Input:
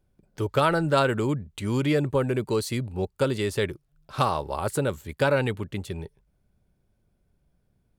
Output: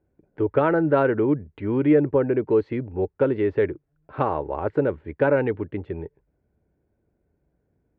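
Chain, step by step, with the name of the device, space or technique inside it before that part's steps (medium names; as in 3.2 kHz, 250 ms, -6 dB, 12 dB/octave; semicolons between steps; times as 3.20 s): bass cabinet (cabinet simulation 60–2000 Hz, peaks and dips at 120 Hz -5 dB, 190 Hz -5 dB, 310 Hz +7 dB, 450 Hz +5 dB, 1.2 kHz -6 dB); trim +1.5 dB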